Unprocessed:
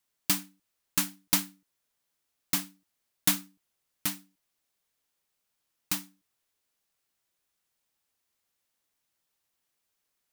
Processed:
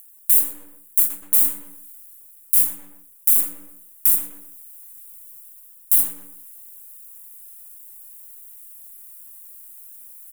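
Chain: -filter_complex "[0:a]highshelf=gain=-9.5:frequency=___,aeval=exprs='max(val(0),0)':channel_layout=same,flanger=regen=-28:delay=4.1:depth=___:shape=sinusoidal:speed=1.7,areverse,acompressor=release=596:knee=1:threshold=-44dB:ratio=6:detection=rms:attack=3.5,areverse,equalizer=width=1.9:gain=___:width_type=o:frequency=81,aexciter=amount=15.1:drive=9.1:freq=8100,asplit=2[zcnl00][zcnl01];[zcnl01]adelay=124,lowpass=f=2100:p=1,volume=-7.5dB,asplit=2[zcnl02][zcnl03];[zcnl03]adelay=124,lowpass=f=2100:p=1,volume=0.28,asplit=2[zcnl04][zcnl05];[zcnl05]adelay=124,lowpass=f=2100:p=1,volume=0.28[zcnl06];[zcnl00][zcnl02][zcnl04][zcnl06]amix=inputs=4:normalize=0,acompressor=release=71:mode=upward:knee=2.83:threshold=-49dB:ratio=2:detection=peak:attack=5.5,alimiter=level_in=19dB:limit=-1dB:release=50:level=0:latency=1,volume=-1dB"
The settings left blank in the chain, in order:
4000, 5.5, -15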